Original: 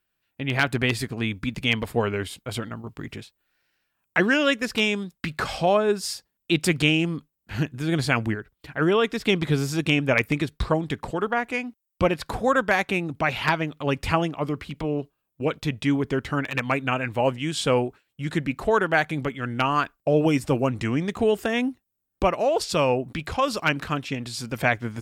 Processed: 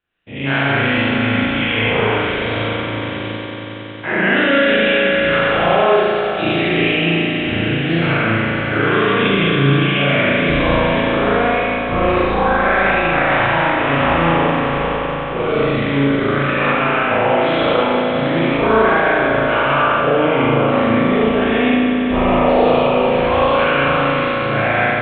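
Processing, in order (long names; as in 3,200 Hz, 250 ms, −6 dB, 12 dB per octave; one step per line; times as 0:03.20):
every bin's largest magnitude spread in time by 240 ms
on a send: echo that builds up and dies away 92 ms, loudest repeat 5, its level −13 dB
on the sum: brickwall limiter −5.5 dBFS, peak gain reduction 6 dB
Butterworth low-pass 3,800 Hz 96 dB per octave
spring reverb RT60 1.2 s, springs 36 ms, chirp 45 ms, DRR −7 dB
level −6.5 dB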